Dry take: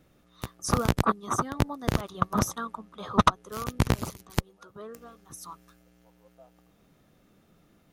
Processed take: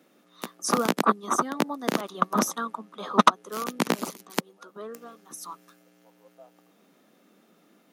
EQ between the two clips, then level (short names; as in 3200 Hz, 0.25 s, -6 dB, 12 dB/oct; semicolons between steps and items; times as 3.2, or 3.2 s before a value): steep high-pass 200 Hz 36 dB/oct; +3.5 dB